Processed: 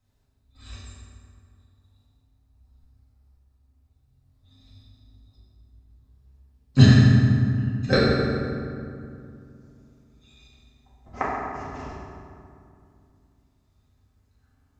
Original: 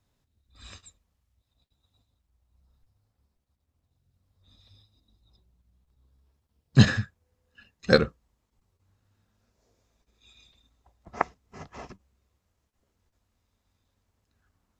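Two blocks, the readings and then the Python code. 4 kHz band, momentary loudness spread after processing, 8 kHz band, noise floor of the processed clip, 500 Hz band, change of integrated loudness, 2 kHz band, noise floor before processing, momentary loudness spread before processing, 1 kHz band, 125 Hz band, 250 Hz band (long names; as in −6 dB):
+2.5 dB, 22 LU, can't be measured, −66 dBFS, +2.0 dB, +3.5 dB, +2.0 dB, −78 dBFS, 16 LU, +4.0 dB, +9.0 dB, +7.5 dB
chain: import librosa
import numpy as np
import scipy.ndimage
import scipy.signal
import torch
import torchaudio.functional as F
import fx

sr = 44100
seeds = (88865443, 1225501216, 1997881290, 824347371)

y = fx.low_shelf(x, sr, hz=60.0, db=11.0)
y = fx.rev_fdn(y, sr, rt60_s=2.4, lf_ratio=1.4, hf_ratio=0.55, size_ms=23.0, drr_db=-8.0)
y = F.gain(torch.from_numpy(y), -5.5).numpy()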